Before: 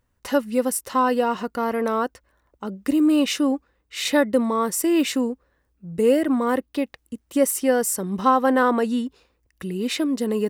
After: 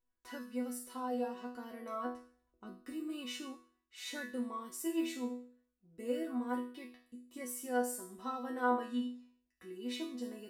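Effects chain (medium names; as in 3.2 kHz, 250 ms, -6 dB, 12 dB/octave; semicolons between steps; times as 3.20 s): 2.04–2.82 s: bass shelf 310 Hz +10.5 dB; chord resonator B3 sus4, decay 0.48 s; trim +2.5 dB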